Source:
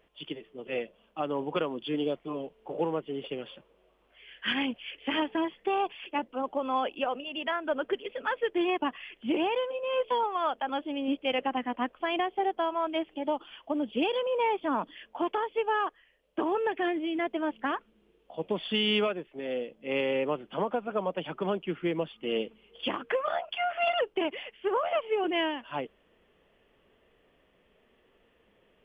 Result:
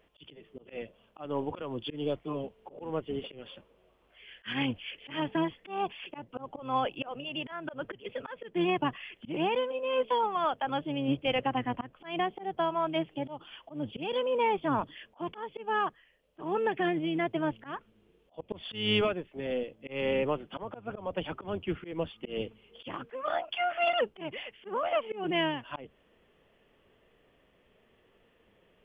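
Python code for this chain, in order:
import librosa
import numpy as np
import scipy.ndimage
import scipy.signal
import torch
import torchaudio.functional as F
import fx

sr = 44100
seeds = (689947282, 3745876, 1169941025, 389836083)

y = fx.octave_divider(x, sr, octaves=1, level_db=-6.0)
y = fx.auto_swell(y, sr, attack_ms=199.0)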